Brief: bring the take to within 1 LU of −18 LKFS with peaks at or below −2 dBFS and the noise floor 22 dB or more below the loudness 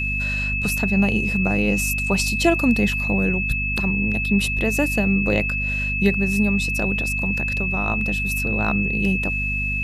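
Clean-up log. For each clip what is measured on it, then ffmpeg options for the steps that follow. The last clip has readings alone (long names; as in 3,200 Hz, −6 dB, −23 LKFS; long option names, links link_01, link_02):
mains hum 50 Hz; hum harmonics up to 250 Hz; level of the hum −25 dBFS; interfering tone 2,600 Hz; level of the tone −23 dBFS; integrated loudness −20.5 LKFS; sample peak −4.5 dBFS; target loudness −18.0 LKFS
→ -af "bandreject=frequency=50:width_type=h:width=4,bandreject=frequency=100:width_type=h:width=4,bandreject=frequency=150:width_type=h:width=4,bandreject=frequency=200:width_type=h:width=4,bandreject=frequency=250:width_type=h:width=4"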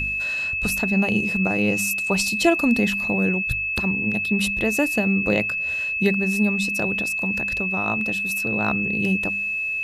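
mains hum none found; interfering tone 2,600 Hz; level of the tone −23 dBFS
→ -af "bandreject=frequency=2600:width=30"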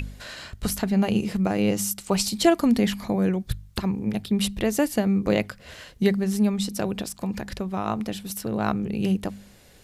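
interfering tone none found; integrated loudness −25.0 LKFS; sample peak −5.0 dBFS; target loudness −18.0 LKFS
→ -af "volume=7dB,alimiter=limit=-2dB:level=0:latency=1"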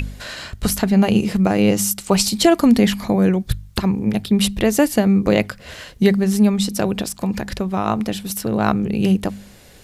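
integrated loudness −18.0 LKFS; sample peak −2.0 dBFS; background noise floor −44 dBFS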